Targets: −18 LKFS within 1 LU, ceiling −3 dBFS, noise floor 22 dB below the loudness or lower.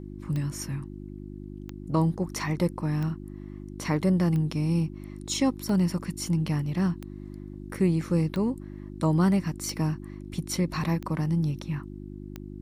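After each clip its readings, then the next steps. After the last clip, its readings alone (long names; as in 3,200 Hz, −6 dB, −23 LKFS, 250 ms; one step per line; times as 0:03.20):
number of clicks 10; mains hum 50 Hz; hum harmonics up to 350 Hz; level of the hum −39 dBFS; integrated loudness −28.0 LKFS; sample peak −12.0 dBFS; target loudness −18.0 LKFS
→ click removal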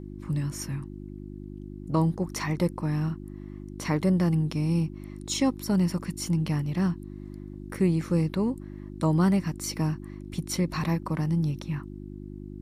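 number of clicks 0; mains hum 50 Hz; hum harmonics up to 350 Hz; level of the hum −39 dBFS
→ hum removal 50 Hz, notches 7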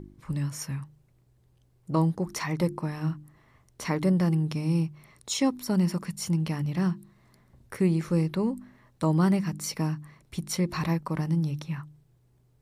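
mains hum none found; integrated loudness −28.5 LKFS; sample peak −12.5 dBFS; target loudness −18.0 LKFS
→ level +10.5 dB
brickwall limiter −3 dBFS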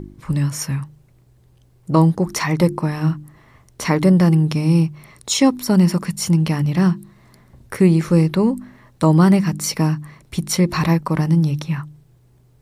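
integrated loudness −18.0 LKFS; sample peak −3.0 dBFS; background noise floor −54 dBFS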